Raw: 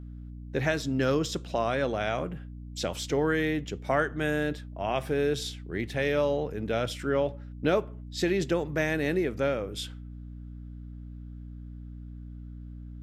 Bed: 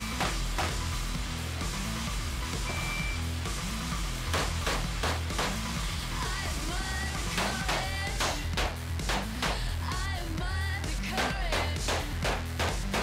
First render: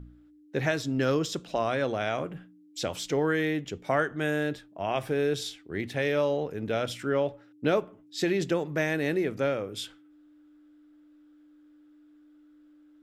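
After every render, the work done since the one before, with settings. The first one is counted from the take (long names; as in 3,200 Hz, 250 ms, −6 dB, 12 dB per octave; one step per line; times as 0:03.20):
hum removal 60 Hz, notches 4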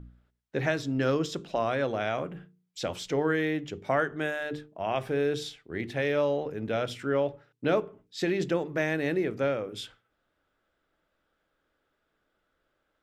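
high-shelf EQ 5,600 Hz −8 dB
mains-hum notches 50/100/150/200/250/300/350/400/450 Hz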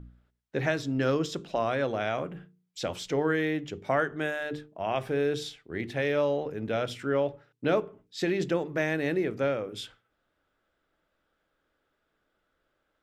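no processing that can be heard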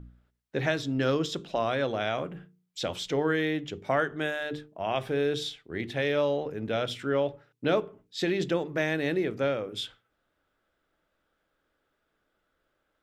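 dynamic equaliser 3,500 Hz, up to +6 dB, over −53 dBFS, Q 2.9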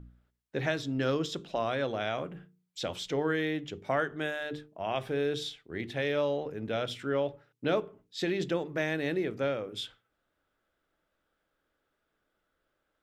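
level −3 dB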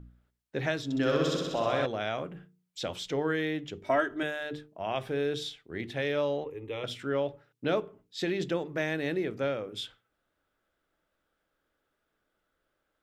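0:00.84–0:01.86: flutter between parallel walls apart 10.9 metres, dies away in 1.4 s
0:03.83–0:04.23: comb filter 3.1 ms, depth 84%
0:06.44–0:06.84: phaser with its sweep stopped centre 1,000 Hz, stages 8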